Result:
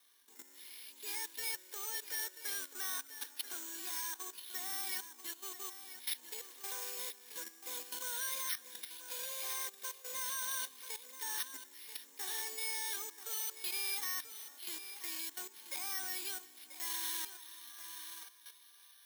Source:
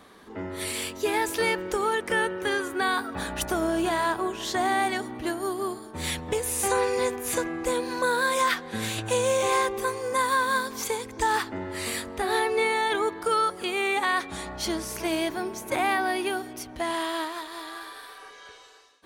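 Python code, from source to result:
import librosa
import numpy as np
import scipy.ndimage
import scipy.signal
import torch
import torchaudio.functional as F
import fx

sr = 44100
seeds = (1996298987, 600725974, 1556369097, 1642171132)

p1 = fx.cvsd(x, sr, bps=32000)
p2 = fx.cabinet(p1, sr, low_hz=220.0, low_slope=24, high_hz=4900.0, hz=(270.0, 2000.0, 4000.0), db=(7, 4, 6))
p3 = fx.level_steps(p2, sr, step_db=15)
p4 = np.repeat(p3[::6], 6)[:len(p3)]
p5 = np.diff(p4, prepend=0.0)
p6 = fx.notch_comb(p5, sr, f0_hz=660.0)
y = p6 + fx.echo_single(p6, sr, ms=986, db=-11.5, dry=0)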